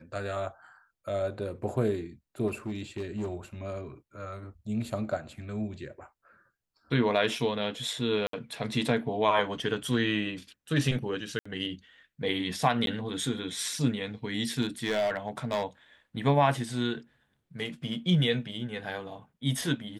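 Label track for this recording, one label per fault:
2.470000	3.350000	clipping −29 dBFS
8.270000	8.330000	drop-out 63 ms
11.390000	11.460000	drop-out 65 ms
12.860000	12.870000	drop-out 12 ms
14.610000	15.640000	clipping −23 dBFS

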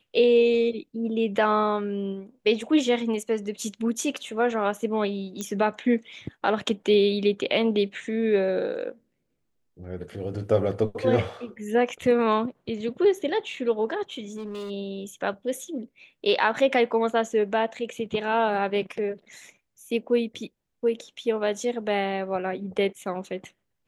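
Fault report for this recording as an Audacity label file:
5.410000	5.410000	click −17 dBFS
14.280000	14.710000	clipping −30.5 dBFS

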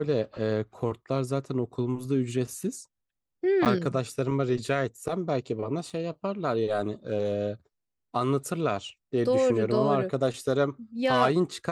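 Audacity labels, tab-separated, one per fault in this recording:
3.650000	3.660000	drop-out 8.9 ms
5.900000	5.900000	drop-out 3.7 ms

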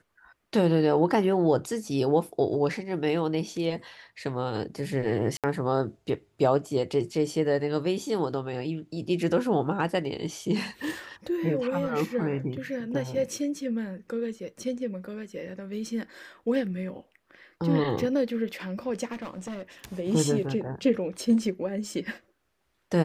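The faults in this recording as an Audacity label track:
5.370000	5.440000	drop-out 67 ms
19.120000	19.850000	clipping −32.5 dBFS

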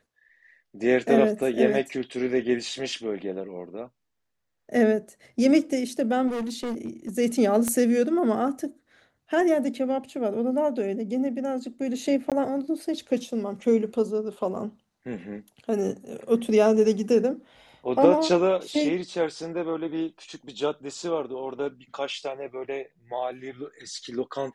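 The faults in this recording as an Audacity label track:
6.270000	7.100000	clipping −26.5 dBFS
7.680000	7.680000	click −14 dBFS
12.300000	12.320000	drop-out 17 ms

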